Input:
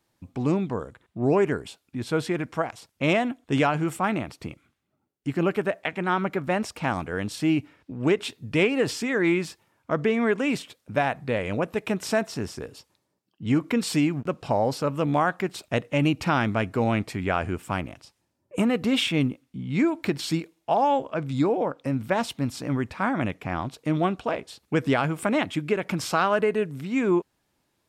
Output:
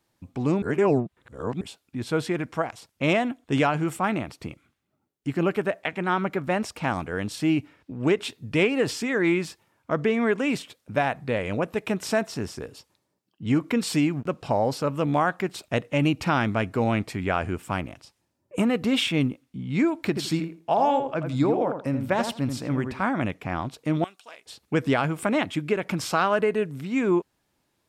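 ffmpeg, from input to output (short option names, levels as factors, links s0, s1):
-filter_complex "[0:a]asettb=1/sr,asplit=3[s0][s1][s2];[s0]atrim=end=20.074[s3];[s1]atrim=start=20.07:end=23.05,asetpts=PTS-STARTPTS,afade=t=in:d=0.004:c=qsin,afade=t=out:st=2.976:d=0.004:c=qsin,asplit=2[s4][s5];[s5]adelay=83,lowpass=f=1500:p=1,volume=0.501,asplit=2[s6][s7];[s7]adelay=83,lowpass=f=1500:p=1,volume=0.21,asplit=2[s8][s9];[s9]adelay=83,lowpass=f=1500:p=1,volume=0.21[s10];[s4][s6][s8][s10]amix=inputs=4:normalize=0,atrim=end_sample=131418[s11];[s2]atrim=start=23.046[s12];[s3][s11]acrossfade=d=0.004:c1=hsin:c2=qsin[s13];[s13][s12]acrossfade=d=0.004:c1=qsin:c2=hsin,asettb=1/sr,asplit=3[s14][s15][s16];[s14]atrim=end=24.044[s17];[s15]atrim=start=24.04:end=24.46,asetpts=PTS-STARTPTS,afade=t=in:d=0.004:c=qsin,afade=t=out:st=0.416:d=0.004:c=qsin,aderivative[s18];[s16]atrim=start=24.456[s19];[s17][s18]acrossfade=d=0.004:c1=hsin:c2=qsin[s20];[s20][s19]acrossfade=d=0.004:c1=qsin:c2=hsin,asplit=3[s21][s22][s23];[s21]atrim=end=0.622[s24];[s22]atrim=start=0.618:end=1.612,asetpts=PTS-STARTPTS,areverse[s25];[s23]atrim=start=1.608[s26];[s24][s25]acrossfade=d=0.004:c1=hsin:c2=hsin[s27];[s27][s26]acrossfade=d=0.004:c1=hsin:c2=hsin"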